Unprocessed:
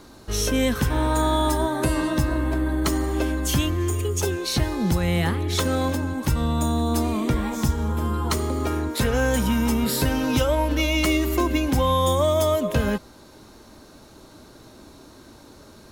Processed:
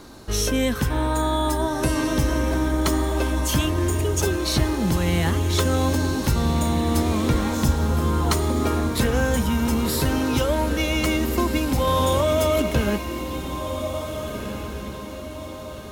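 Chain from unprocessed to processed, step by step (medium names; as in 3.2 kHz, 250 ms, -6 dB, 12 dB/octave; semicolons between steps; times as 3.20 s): gain riding within 4 dB 0.5 s; on a send: echo that smears into a reverb 1740 ms, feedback 42%, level -7 dB; 11.87–12.62 s: on the sum: level flattener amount 100%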